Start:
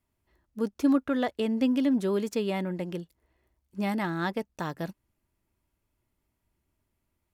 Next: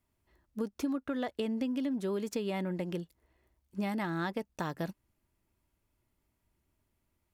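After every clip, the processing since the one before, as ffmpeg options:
-af "acompressor=threshold=-30dB:ratio=10"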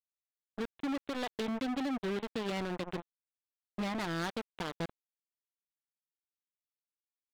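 -af "aresample=8000,acrusher=bits=4:mix=0:aa=0.5,aresample=44100,asoftclip=type=hard:threshold=-36dB,volume=6dB"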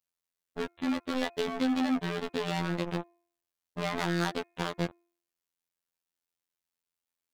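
-af "bandreject=f=353.8:t=h:w=4,bandreject=f=707.6:t=h:w=4,bandreject=f=1.0614k:t=h:w=4,bandreject=f=1.4152k:t=h:w=4,bandreject=f=1.769k:t=h:w=4,bandreject=f=2.1228k:t=h:w=4,bandreject=f=2.4766k:t=h:w=4,afftfilt=real='hypot(re,im)*cos(PI*b)':imag='0':win_size=2048:overlap=0.75,volume=8.5dB"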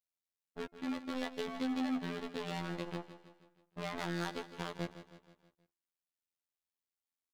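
-af "aecho=1:1:159|318|477|636|795:0.224|0.114|0.0582|0.0297|0.0151,volume=-8dB"

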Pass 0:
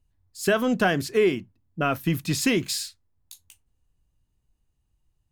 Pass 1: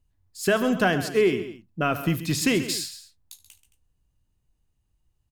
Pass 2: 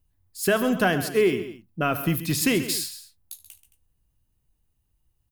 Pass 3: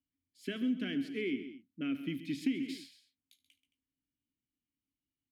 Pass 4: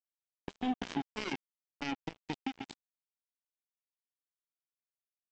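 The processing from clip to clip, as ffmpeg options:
-af "aecho=1:1:74|132|220:0.126|0.224|0.126"
-af "aexciter=amount=3.2:drive=2.8:freq=9.7k"
-filter_complex "[0:a]asplit=3[a][b][c];[a]bandpass=f=270:t=q:w=8,volume=0dB[d];[b]bandpass=f=2.29k:t=q:w=8,volume=-6dB[e];[c]bandpass=f=3.01k:t=q:w=8,volume=-9dB[f];[d][e][f]amix=inputs=3:normalize=0,acrossover=split=150[g][h];[h]acompressor=threshold=-30dB:ratio=6[i];[g][i]amix=inputs=2:normalize=0"
-af "alimiter=level_in=4dB:limit=-24dB:level=0:latency=1:release=218,volume=-4dB,aresample=16000,acrusher=bits=4:mix=0:aa=0.5,aresample=44100,volume=3dB"

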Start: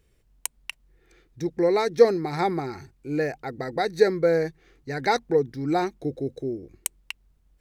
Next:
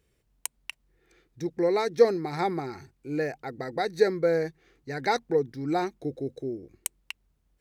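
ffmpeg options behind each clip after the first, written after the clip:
-af "highpass=f=76:p=1,volume=-3dB"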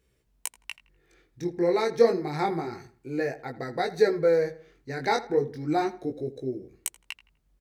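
-filter_complex "[0:a]flanger=delay=15.5:depth=7.2:speed=0.3,asplit=2[a][b];[b]adelay=83,lowpass=f=2.6k:p=1,volume=-16dB,asplit=2[c][d];[d]adelay=83,lowpass=f=2.6k:p=1,volume=0.37,asplit=2[e][f];[f]adelay=83,lowpass=f=2.6k:p=1,volume=0.37[g];[a][c][e][g]amix=inputs=4:normalize=0,volume=3.5dB"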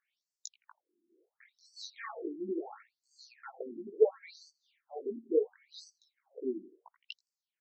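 -af "afftfilt=real='re*between(b*sr/1024,260*pow(6300/260,0.5+0.5*sin(2*PI*0.72*pts/sr))/1.41,260*pow(6300/260,0.5+0.5*sin(2*PI*0.72*pts/sr))*1.41)':imag='im*between(b*sr/1024,260*pow(6300/260,0.5+0.5*sin(2*PI*0.72*pts/sr))/1.41,260*pow(6300/260,0.5+0.5*sin(2*PI*0.72*pts/sr))*1.41)':win_size=1024:overlap=0.75,volume=-3dB"

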